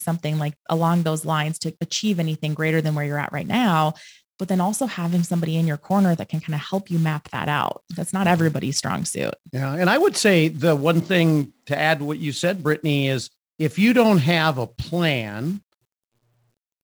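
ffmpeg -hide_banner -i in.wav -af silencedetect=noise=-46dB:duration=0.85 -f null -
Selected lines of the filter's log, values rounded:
silence_start: 15.59
silence_end: 16.84 | silence_duration: 1.25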